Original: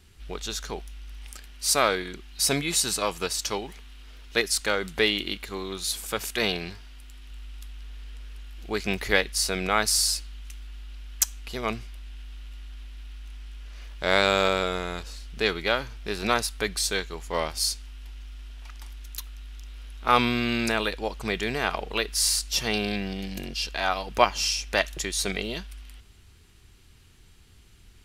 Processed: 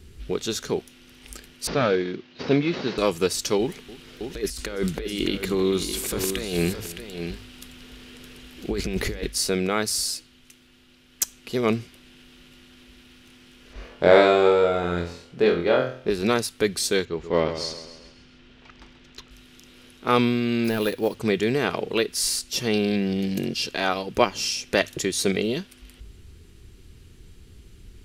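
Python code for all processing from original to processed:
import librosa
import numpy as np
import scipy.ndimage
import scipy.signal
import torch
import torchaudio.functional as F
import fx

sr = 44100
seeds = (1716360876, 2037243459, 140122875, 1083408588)

y = fx.chain(x, sr, fx.cvsd(bps=32000),
    fx.bandpass_edges(low_hz=130.0, high_hz=4000.0), at=(1.67, 2.98))
y = fx.chain(y, sr, fx.over_compress(threshold_db=-34.0, ratio=-1.0),
    fx.echo_multitap(ms=(294, 616), db=(-19.0, -8.5)), at=(3.59, 9.27))
y = fx.chain(y, sr, fx.lowpass(hz=3100.0, slope=6),
    fx.peak_eq(hz=720.0, db=8.0, octaves=1.6),
    fx.room_flutter(wall_m=4.0, rt60_s=0.4), at=(13.73, 16.1))
y = fx.chain(y, sr, fx.air_absorb(metres=160.0),
    fx.echo_feedback(ms=133, feedback_pct=50, wet_db=-10.5), at=(17.05, 19.31))
y = fx.chain(y, sr, fx.cvsd(bps=64000),
    fx.resample_bad(factor=3, down='filtered', up='hold'), at=(20.64, 21.15))
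y = fx.low_shelf_res(y, sr, hz=570.0, db=7.0, q=1.5)
y = fx.hum_notches(y, sr, base_hz=50, count=2)
y = fx.rider(y, sr, range_db=4, speed_s=0.5)
y = y * 10.0 ** (-1.5 / 20.0)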